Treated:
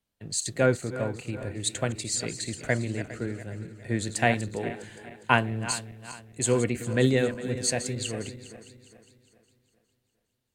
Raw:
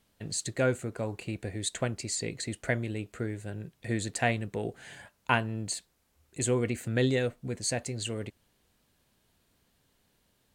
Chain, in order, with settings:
feedback delay that plays each chunk backwards 204 ms, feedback 71%, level −10.5 dB
multiband upward and downward expander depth 40%
level +2 dB

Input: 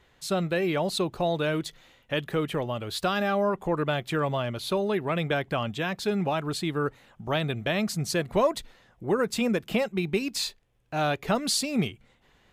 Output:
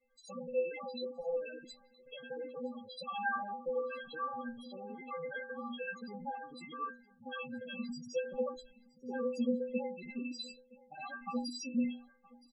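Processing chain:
reversed piece by piece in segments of 59 ms
high-shelf EQ 2,900 Hz −5 dB
stiff-string resonator 240 Hz, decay 0.49 s, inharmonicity 0.03
spectral peaks only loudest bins 8
on a send: single-tap delay 969 ms −23 dB
on the sum: level +5.5 dB

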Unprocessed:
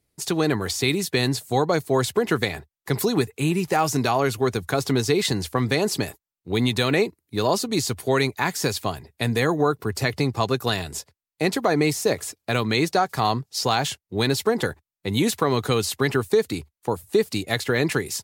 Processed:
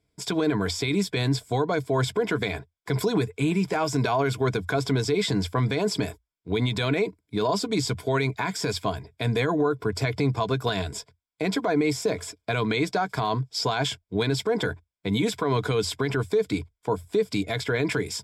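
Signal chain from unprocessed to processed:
EQ curve with evenly spaced ripples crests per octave 1.7, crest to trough 10 dB
brickwall limiter −14.5 dBFS, peak gain reduction 10 dB
high-frequency loss of the air 64 metres

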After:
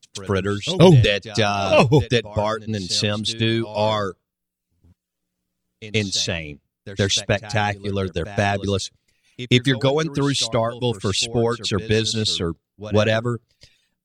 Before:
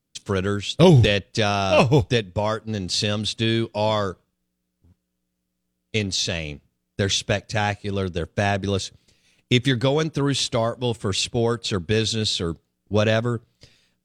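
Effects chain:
reverb reduction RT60 0.69 s
echo ahead of the sound 125 ms −16 dB
level +2.5 dB

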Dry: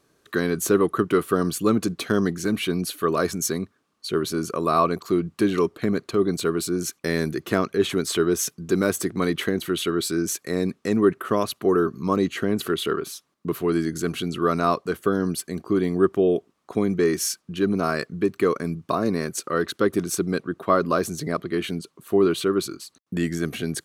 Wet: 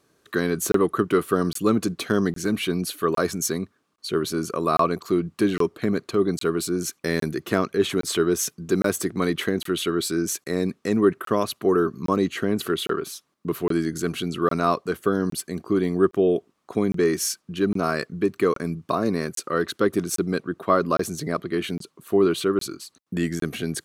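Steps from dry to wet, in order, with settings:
high-pass filter 42 Hz 6 dB per octave
regular buffer underruns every 0.81 s, samples 1,024, zero, from 0:00.72

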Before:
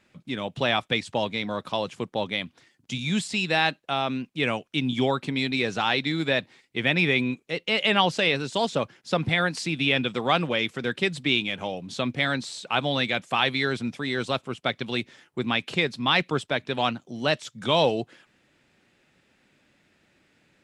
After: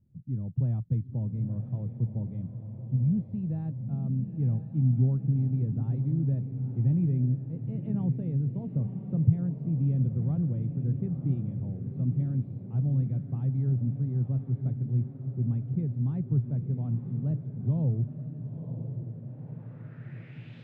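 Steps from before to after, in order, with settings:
low-pass filter sweep 120 Hz → 3,600 Hz, 0:18.13–0:20.61
feedback delay with all-pass diffusion 962 ms, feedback 56%, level −8 dB
level +4 dB

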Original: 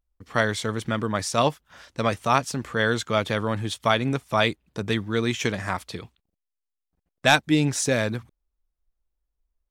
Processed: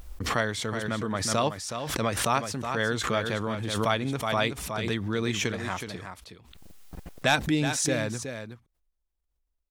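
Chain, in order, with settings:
single-tap delay 370 ms −8.5 dB
background raised ahead of every attack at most 39 dB per second
level −5.5 dB

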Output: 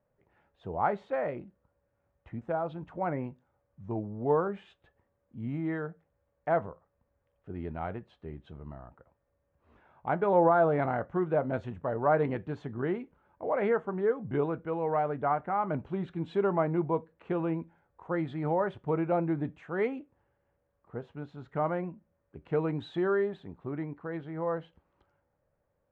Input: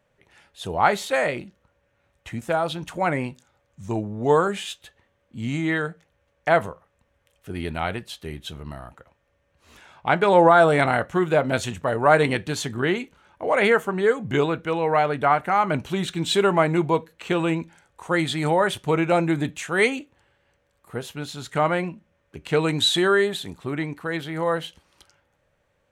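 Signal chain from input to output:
low-pass filter 1,100 Hz 12 dB per octave
level −7.5 dB

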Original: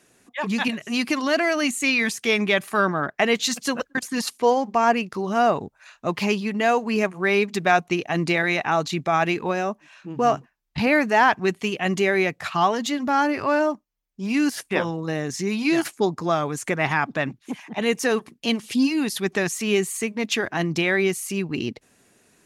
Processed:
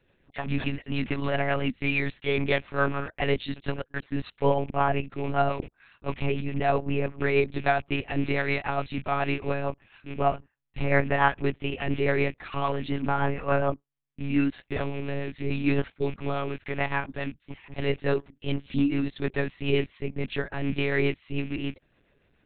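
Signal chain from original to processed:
loose part that buzzes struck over −34 dBFS, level −27 dBFS
harmonic and percussive parts rebalanced harmonic +5 dB
rotating-speaker cabinet horn 7 Hz
one-pitch LPC vocoder at 8 kHz 140 Hz
level −6 dB

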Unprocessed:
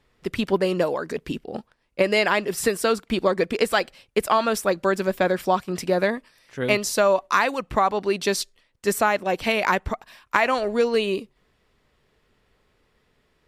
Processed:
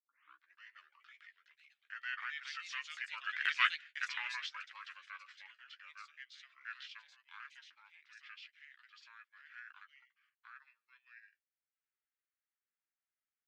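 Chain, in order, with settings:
turntable start at the beginning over 0.66 s
source passing by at 0:03.73, 14 m/s, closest 4.1 metres
inverse Chebyshev high-pass filter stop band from 860 Hz, stop band 50 dB
high-frequency loss of the air 93 metres
transient designer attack −4 dB, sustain −8 dB
pitch shifter −10 semitones
frequency shifter +250 Hz
delay with pitch and tempo change per echo 582 ms, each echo +3 semitones, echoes 2, each echo −6 dB
double-tracking delay 13 ms −8.5 dB
level +4.5 dB

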